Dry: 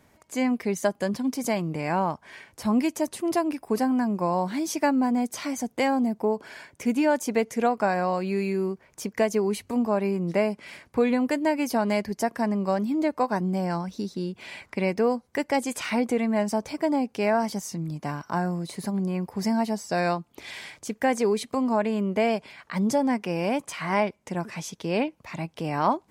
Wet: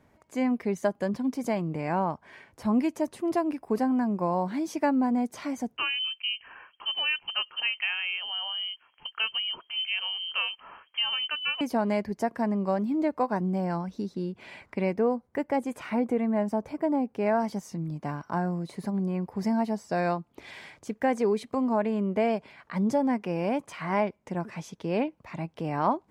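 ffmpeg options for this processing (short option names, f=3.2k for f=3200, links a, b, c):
-filter_complex "[0:a]asettb=1/sr,asplit=3[a][b][c];[a]atrim=end=5.774[d];[b]atrim=start=5.77:end=11.61,asetpts=PTS-STARTPTS,afade=t=in:d=0.004:c=qsin,afade=t=out:st=5.836:d=0.004:c=qsin,lowpass=f=2.8k:t=q:w=0.5098,lowpass=f=2.8k:t=q:w=0.6013,lowpass=f=2.8k:t=q:w=0.9,lowpass=f=2.8k:t=q:w=2.563,afreqshift=-3300[e];[c]atrim=start=11.606[f];[d][e]acrossfade=d=0.004:c1=hsin:c2=qsin[g];[g][f]acrossfade=d=0.004:c1=qsin:c2=hsin,asettb=1/sr,asplit=3[h][i][j];[h]atrim=end=14.964[k];[i]atrim=start=14.96:end=17.26,asetpts=PTS-STARTPTS,afade=t=in:d=0.004:c=qsin,afade=t=out:st=2.296:d=0.004:c=qsin,equalizer=f=5k:w=0.54:g=-7.5[l];[j]atrim=start=17.256[m];[k][l]acrossfade=d=0.004:c1=hsin:c2=qsin[n];[n][m]acrossfade=d=0.004:c1=qsin:c2=hsin,highshelf=f=3k:g=-11.5,volume=-1.5dB"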